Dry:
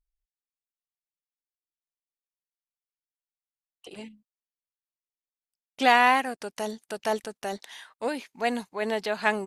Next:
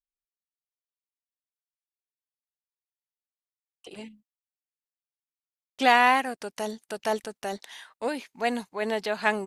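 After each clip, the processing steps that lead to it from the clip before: gate with hold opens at -45 dBFS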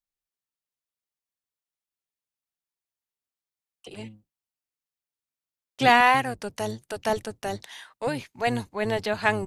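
octaver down 1 oct, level -3 dB; gain +1.5 dB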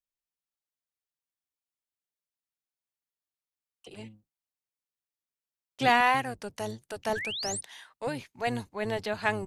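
painted sound rise, 7.15–7.61, 1500–9800 Hz -30 dBFS; gain -5 dB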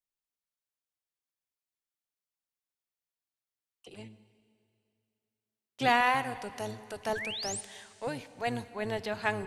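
plate-style reverb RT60 2.6 s, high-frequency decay 0.95×, DRR 14 dB; gain -2.5 dB

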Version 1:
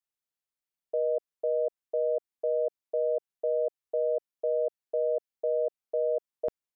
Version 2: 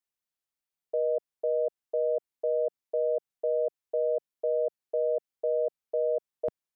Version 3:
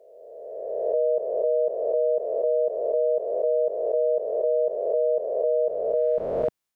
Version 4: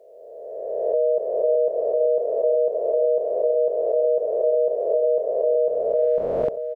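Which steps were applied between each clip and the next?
dynamic EQ 160 Hz, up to +3 dB, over -46 dBFS, Q 0.95
spectral swells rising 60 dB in 1.87 s; gain +4.5 dB
echo 0.635 s -8.5 dB; gain +2.5 dB

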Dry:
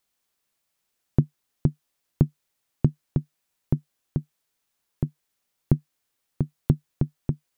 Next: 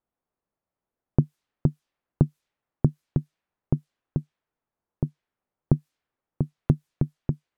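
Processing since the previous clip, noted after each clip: low-pass opened by the level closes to 930 Hz, open at -23.5 dBFS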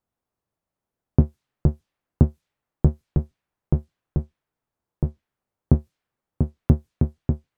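octaver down 1 oct, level 0 dB; gain +1.5 dB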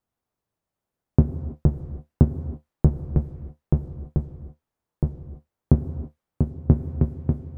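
non-linear reverb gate 0.35 s flat, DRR 10.5 dB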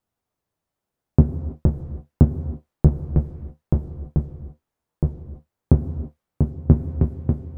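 flange 0.55 Hz, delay 9.2 ms, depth 5.6 ms, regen -50%; gain +6 dB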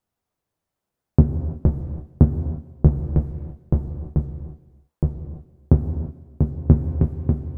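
non-linear reverb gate 0.38 s flat, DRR 11.5 dB

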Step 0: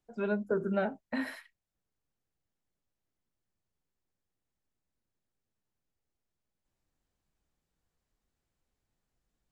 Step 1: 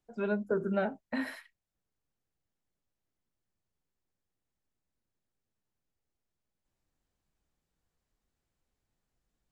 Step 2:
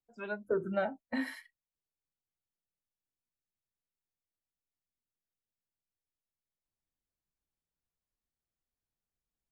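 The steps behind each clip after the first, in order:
nothing audible
spectral noise reduction 13 dB

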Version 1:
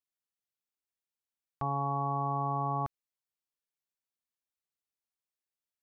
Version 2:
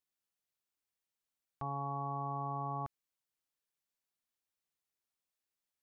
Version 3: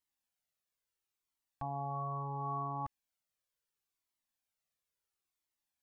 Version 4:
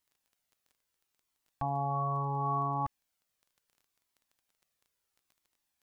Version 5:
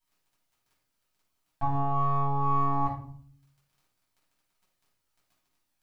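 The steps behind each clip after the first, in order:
limiter -31.5 dBFS, peak gain reduction 8 dB; gain +1.5 dB
cascading flanger falling 0.73 Hz; gain +4.5 dB
crackle 13/s -58 dBFS; gain +6.5 dB
half-wave gain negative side -3 dB; shoebox room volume 570 m³, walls furnished, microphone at 7.9 m; gain -6 dB

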